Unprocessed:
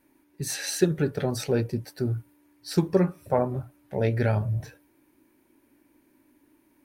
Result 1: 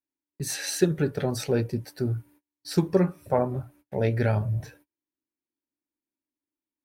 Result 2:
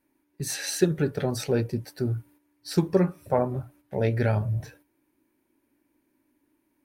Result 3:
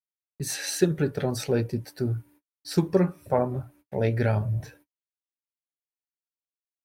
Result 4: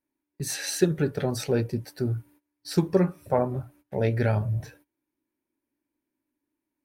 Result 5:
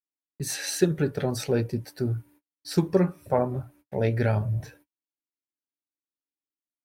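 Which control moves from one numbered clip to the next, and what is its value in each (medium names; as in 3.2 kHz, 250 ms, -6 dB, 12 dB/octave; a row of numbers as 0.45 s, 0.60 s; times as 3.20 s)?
gate, range: -33 dB, -8 dB, -59 dB, -21 dB, -46 dB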